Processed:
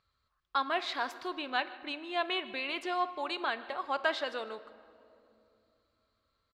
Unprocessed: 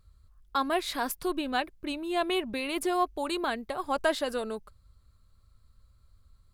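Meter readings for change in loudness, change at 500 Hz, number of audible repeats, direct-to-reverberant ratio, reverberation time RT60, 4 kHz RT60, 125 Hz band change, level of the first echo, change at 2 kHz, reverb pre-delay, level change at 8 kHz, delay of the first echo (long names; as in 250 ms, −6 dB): −3.5 dB, −6.0 dB, 1, 12.0 dB, 2.7 s, 1.5 s, can't be measured, −20.5 dB, 0.0 dB, 7 ms, below −15 dB, 153 ms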